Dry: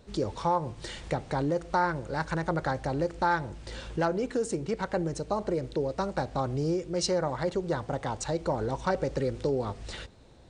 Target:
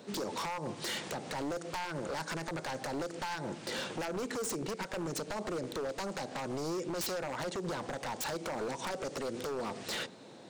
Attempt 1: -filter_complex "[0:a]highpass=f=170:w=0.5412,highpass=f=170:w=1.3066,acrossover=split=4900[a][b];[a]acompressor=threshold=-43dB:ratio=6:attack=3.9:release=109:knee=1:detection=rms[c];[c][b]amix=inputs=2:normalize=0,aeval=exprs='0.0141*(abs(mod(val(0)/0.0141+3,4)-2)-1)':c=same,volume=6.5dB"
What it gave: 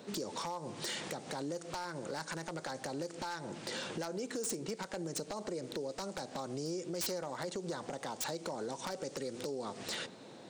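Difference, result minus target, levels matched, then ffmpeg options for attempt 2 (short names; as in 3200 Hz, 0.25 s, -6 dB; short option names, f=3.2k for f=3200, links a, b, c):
compressor: peak gain reduction +5.5 dB
-filter_complex "[0:a]highpass=f=170:w=0.5412,highpass=f=170:w=1.3066,acrossover=split=4900[a][b];[a]acompressor=threshold=-36.5dB:ratio=6:attack=3.9:release=109:knee=1:detection=rms[c];[c][b]amix=inputs=2:normalize=0,aeval=exprs='0.0141*(abs(mod(val(0)/0.0141+3,4)-2)-1)':c=same,volume=6.5dB"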